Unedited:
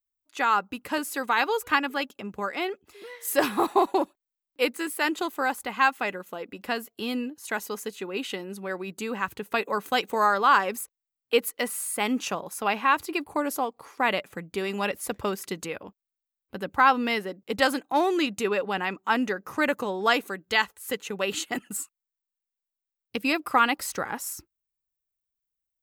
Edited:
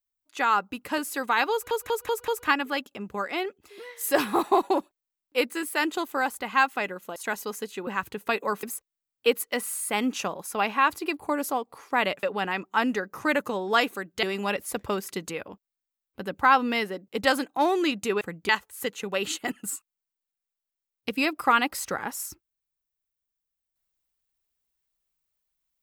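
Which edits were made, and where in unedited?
1.52 stutter 0.19 s, 5 plays
6.4–7.4 cut
8.11–9.12 cut
9.88–10.7 cut
14.3–14.58 swap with 18.56–20.56

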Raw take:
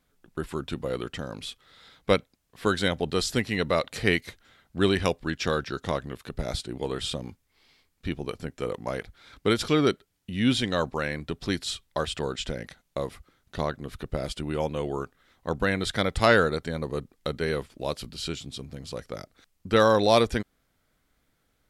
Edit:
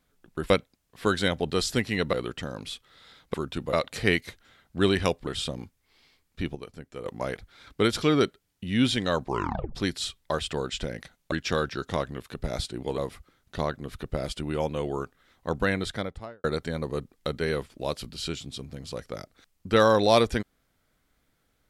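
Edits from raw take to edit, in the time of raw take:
0.5–0.89 swap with 2.1–3.73
5.27–6.93 move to 12.98
8.21–8.71 gain -8 dB
10.9 tape stop 0.51 s
15.65–16.44 studio fade out

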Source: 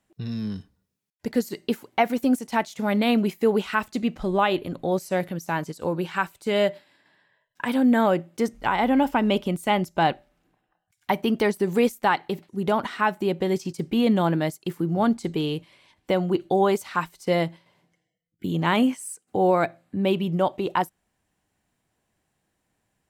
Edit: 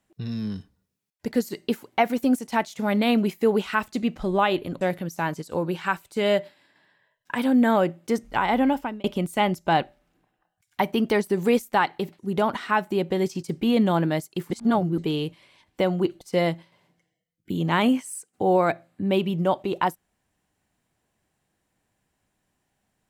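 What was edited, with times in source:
4.81–5.11 cut
8.92–9.34 fade out
14.8–15.28 reverse
16.51–17.15 cut

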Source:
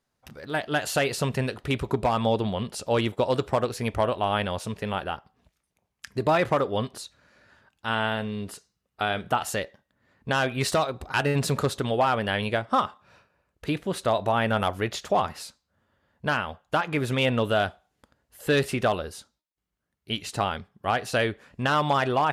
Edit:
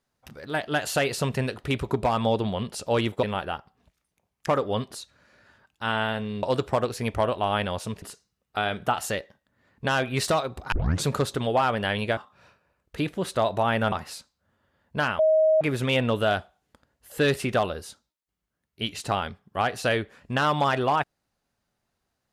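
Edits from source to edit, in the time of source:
3.23–4.82 move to 8.46
6.06–6.5 cut
11.16 tape start 0.33 s
12.61–12.86 cut
14.61–15.21 cut
16.48–16.9 bleep 630 Hz -16 dBFS

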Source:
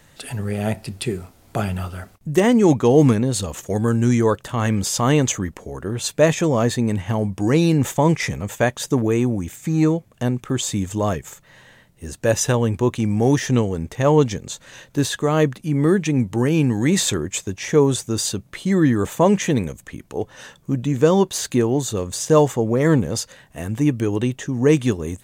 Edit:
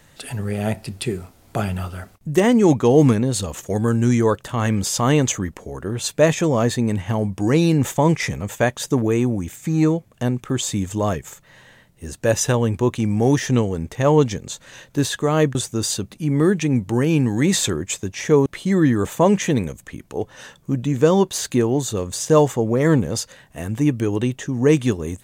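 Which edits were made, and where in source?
17.9–18.46 move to 15.55

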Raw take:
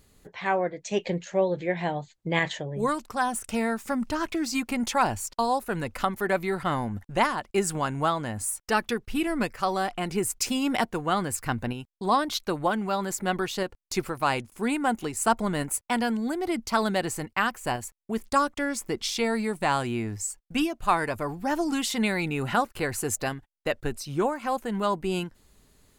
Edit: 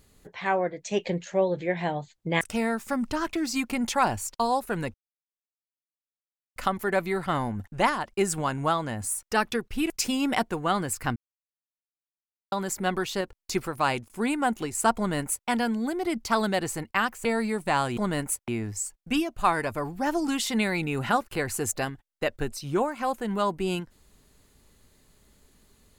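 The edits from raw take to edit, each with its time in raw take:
2.41–3.4 cut
5.93 insert silence 1.62 s
9.27–10.32 cut
11.58–12.94 mute
15.39–15.9 copy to 19.92
17.67–19.2 cut

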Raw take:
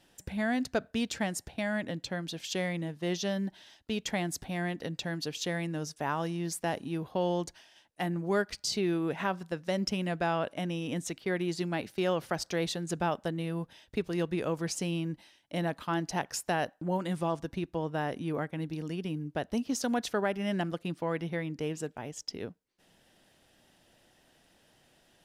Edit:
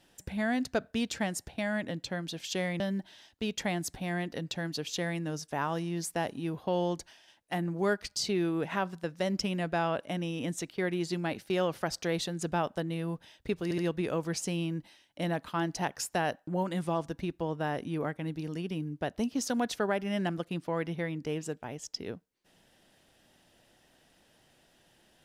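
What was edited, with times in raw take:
2.8–3.28 cut
14.12 stutter 0.07 s, 3 plays

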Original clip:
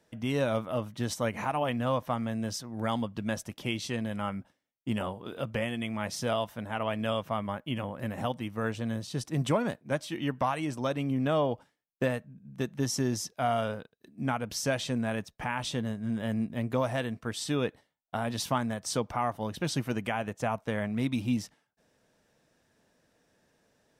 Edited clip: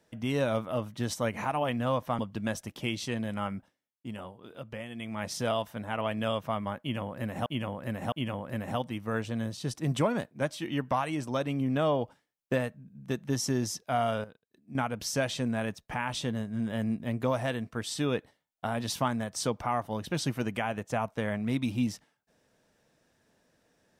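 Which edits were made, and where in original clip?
2.19–3.01 cut
4.38–6.14 dip -8.5 dB, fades 0.43 s
7.62–8.28 loop, 3 plays
13.74–14.25 gain -9.5 dB

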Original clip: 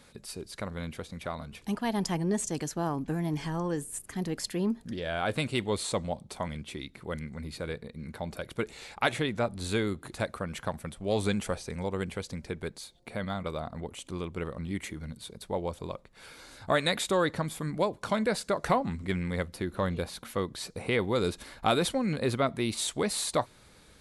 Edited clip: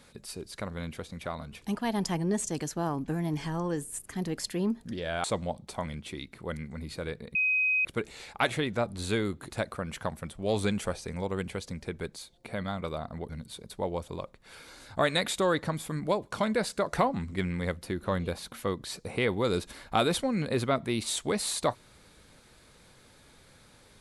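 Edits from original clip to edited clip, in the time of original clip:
5.24–5.86 cut
7.97–8.47 bleep 2520 Hz -23 dBFS
13.91–15 cut

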